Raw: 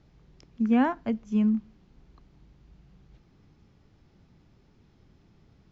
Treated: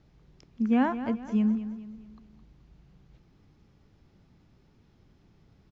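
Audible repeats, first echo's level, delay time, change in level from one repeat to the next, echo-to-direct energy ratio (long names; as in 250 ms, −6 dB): 4, −12.0 dB, 213 ms, −7.5 dB, −11.0 dB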